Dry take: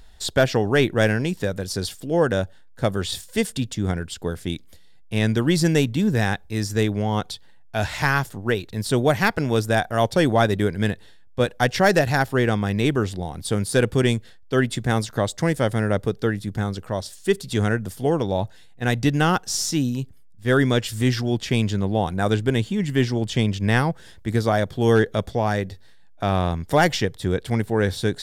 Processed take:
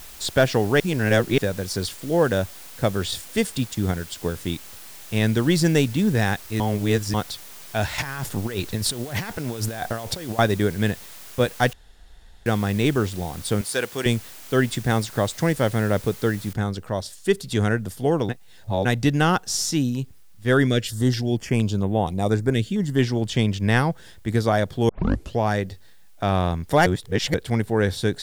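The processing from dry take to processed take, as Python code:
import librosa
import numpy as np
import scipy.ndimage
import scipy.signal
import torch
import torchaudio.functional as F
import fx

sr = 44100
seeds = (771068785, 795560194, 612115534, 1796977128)

y = fx.transient(x, sr, attack_db=1, sustain_db=-6, at=(3.55, 4.32), fade=0.02)
y = fx.over_compress(y, sr, threshold_db=-29.0, ratio=-1.0, at=(7.98, 10.39))
y = fx.highpass(y, sr, hz=880.0, slope=6, at=(13.61, 14.06))
y = fx.noise_floor_step(y, sr, seeds[0], at_s=16.53, before_db=-43, after_db=-64, tilt_db=0.0)
y = fx.filter_held_notch(y, sr, hz=4.3, low_hz=950.0, high_hz=4800.0, at=(20.67, 22.99))
y = fx.edit(y, sr, fx.reverse_span(start_s=0.8, length_s=0.58),
    fx.reverse_span(start_s=6.6, length_s=0.54),
    fx.room_tone_fill(start_s=11.73, length_s=0.73),
    fx.reverse_span(start_s=18.29, length_s=0.56),
    fx.tape_start(start_s=24.89, length_s=0.49),
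    fx.reverse_span(start_s=26.86, length_s=0.48), tone=tone)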